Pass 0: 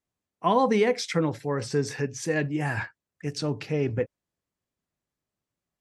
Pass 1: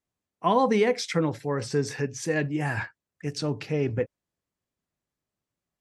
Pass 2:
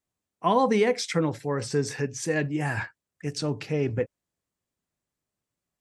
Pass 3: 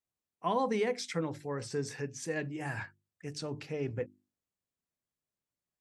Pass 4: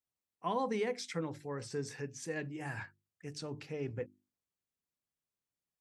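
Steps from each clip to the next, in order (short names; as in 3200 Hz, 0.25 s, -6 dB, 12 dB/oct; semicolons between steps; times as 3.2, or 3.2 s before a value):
nothing audible
bell 8200 Hz +4 dB 0.64 oct
notches 50/100/150/200/250/300/350 Hz; gain -8.5 dB
bell 630 Hz -2.5 dB 0.23 oct; gain -3.5 dB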